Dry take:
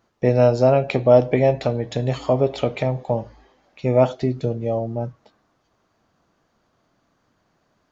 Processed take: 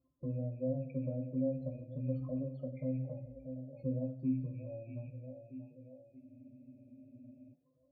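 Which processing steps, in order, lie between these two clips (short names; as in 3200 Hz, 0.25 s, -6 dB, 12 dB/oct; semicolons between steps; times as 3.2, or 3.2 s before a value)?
rattling part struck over -30 dBFS, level -18 dBFS; tape echo 0.633 s, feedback 50%, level -18 dB, low-pass 4600 Hz; loudest bins only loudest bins 16; compressor 3:1, threshold -33 dBFS, peak gain reduction 18 dB; notches 60/120 Hz; octave resonator C, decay 0.29 s; on a send at -3 dB: bell 110 Hz +10.5 dB 0.66 oct + reverb RT60 1.0 s, pre-delay 3 ms; on the sum: spectral freeze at 6.23, 1.30 s; gain +5 dB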